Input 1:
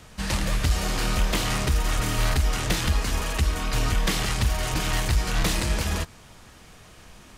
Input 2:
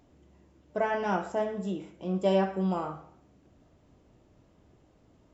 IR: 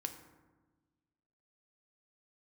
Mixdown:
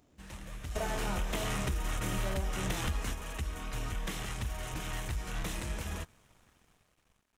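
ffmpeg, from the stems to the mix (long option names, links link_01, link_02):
-filter_complex "[0:a]equalizer=frequency=4600:width=3.8:gain=-9.5,dynaudnorm=framelen=410:gausssize=5:maxgain=10dB,aeval=exprs='sgn(val(0))*max(abs(val(0))-0.00501,0)':channel_layout=same,volume=-9dB[link_01];[1:a]highshelf=frequency=5000:gain=9,volume=-5.5dB,asplit=2[link_02][link_03];[link_03]apad=whole_len=325279[link_04];[link_01][link_04]sidechaingate=range=-11dB:threshold=-59dB:ratio=16:detection=peak[link_05];[link_05][link_02]amix=inputs=2:normalize=0,acompressor=threshold=-30dB:ratio=6"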